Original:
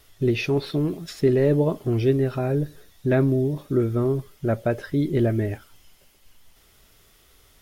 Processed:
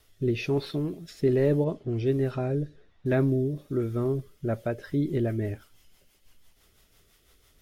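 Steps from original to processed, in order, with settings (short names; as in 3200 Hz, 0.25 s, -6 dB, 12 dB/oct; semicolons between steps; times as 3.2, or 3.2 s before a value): rotary speaker horn 1.2 Hz, later 6 Hz, at 4.31; 1.64–3.06 low-pass opened by the level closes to 1700 Hz, open at -18 dBFS; gain -3.5 dB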